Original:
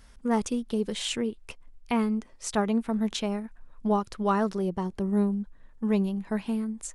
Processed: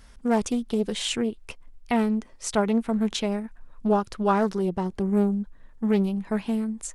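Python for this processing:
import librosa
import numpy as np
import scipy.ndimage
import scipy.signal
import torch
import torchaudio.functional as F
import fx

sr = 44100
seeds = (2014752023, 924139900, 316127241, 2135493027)

y = fx.doppler_dist(x, sr, depth_ms=0.24)
y = F.gain(torch.from_numpy(y), 3.0).numpy()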